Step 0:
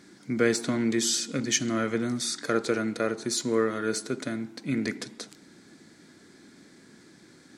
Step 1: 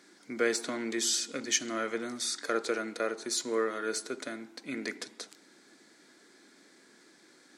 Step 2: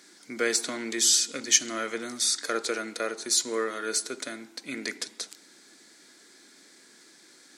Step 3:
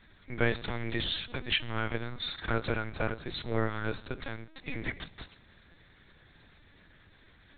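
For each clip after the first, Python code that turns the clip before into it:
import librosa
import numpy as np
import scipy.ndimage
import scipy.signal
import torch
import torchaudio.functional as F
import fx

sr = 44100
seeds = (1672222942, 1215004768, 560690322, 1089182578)

y1 = scipy.signal.sosfilt(scipy.signal.butter(2, 380.0, 'highpass', fs=sr, output='sos'), x)
y1 = y1 * librosa.db_to_amplitude(-2.5)
y2 = fx.high_shelf(y1, sr, hz=2700.0, db=10.0)
y3 = fx.lpc_vocoder(y2, sr, seeds[0], excitation='pitch_kept', order=8)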